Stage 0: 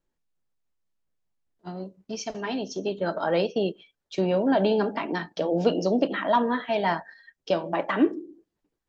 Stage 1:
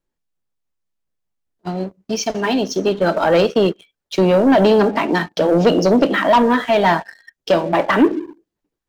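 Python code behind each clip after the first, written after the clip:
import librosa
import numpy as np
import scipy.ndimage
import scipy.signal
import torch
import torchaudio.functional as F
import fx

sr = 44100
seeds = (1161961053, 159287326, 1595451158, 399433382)

y = fx.leveller(x, sr, passes=2)
y = y * librosa.db_to_amplitude(4.5)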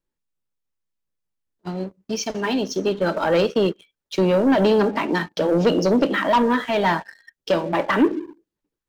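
y = fx.peak_eq(x, sr, hz=700.0, db=-6.5, octaves=0.21)
y = y * librosa.db_to_amplitude(-4.0)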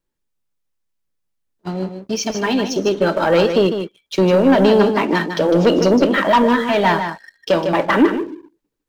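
y = x + 10.0 ** (-8.0 / 20.0) * np.pad(x, (int(153 * sr / 1000.0), 0))[:len(x)]
y = y * librosa.db_to_amplitude(4.0)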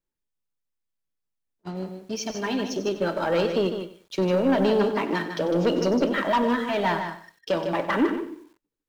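y = fx.echo_crushed(x, sr, ms=94, feedback_pct=35, bits=7, wet_db=-13.0)
y = y * librosa.db_to_amplitude(-9.0)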